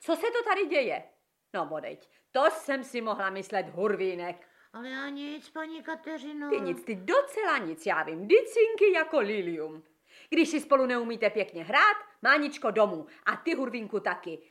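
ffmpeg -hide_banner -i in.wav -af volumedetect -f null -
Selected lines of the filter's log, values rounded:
mean_volume: -28.9 dB
max_volume: -10.3 dB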